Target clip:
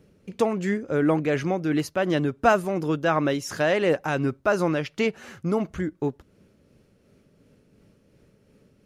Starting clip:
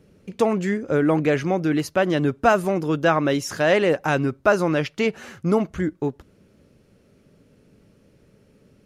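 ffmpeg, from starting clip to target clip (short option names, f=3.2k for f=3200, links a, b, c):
-af "tremolo=f=2.8:d=0.34,volume=-1.5dB"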